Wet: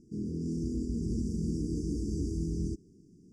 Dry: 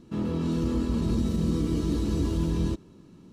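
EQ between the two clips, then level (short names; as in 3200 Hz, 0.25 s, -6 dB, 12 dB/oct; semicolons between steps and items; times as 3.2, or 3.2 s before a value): brick-wall FIR band-stop 470–4600 Hz; synth low-pass 7900 Hz, resonance Q 1.5; -6.5 dB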